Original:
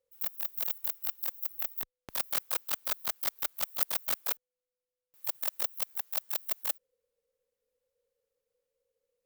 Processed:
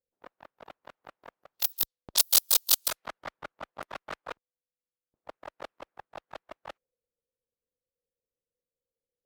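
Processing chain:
harmonic and percussive parts rebalanced harmonic −14 dB
0:01.54–0:02.88: high shelf with overshoot 2,900 Hz +12 dB, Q 1.5
low-pass that shuts in the quiet parts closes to 480 Hz, open at −20 dBFS
level +3 dB

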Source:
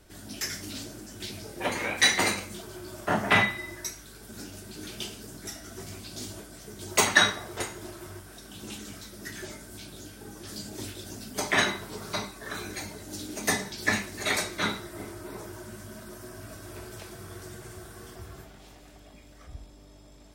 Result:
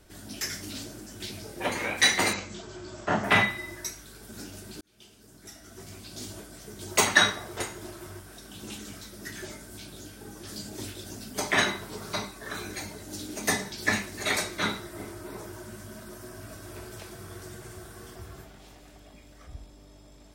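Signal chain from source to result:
0:02.33–0:03.24: linear-phase brick-wall low-pass 8,100 Hz
0:04.81–0:06.43: fade in

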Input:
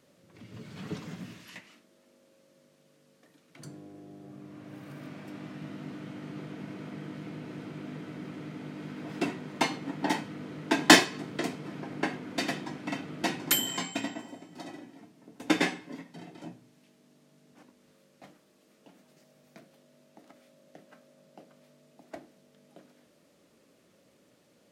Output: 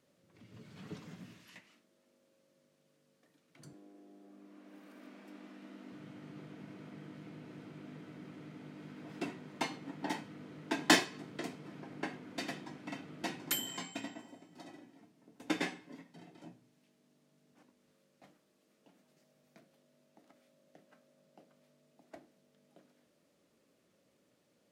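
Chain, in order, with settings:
0:03.73–0:05.92: Butterworth high-pass 190 Hz 72 dB per octave
level −9 dB

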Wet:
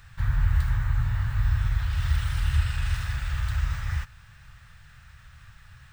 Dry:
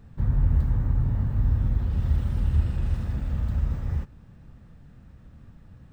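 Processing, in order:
drawn EQ curve 120 Hz 0 dB, 270 Hz −24 dB, 1,500 Hz +15 dB
level −1 dB

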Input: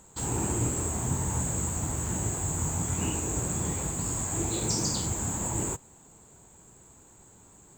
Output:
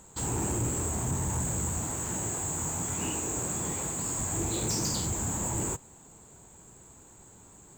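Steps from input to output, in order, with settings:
0:01.82–0:04.19: low-shelf EQ 140 Hz −11 dB
soft clipping −26 dBFS, distortion −15 dB
level +1.5 dB

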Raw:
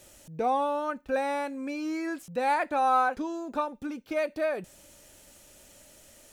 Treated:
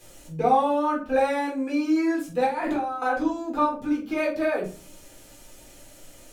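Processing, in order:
0:02.45–0:03.02: compressor whose output falls as the input rises −36 dBFS, ratio −1
rectangular room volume 240 cubic metres, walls furnished, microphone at 3.9 metres
level −2.5 dB

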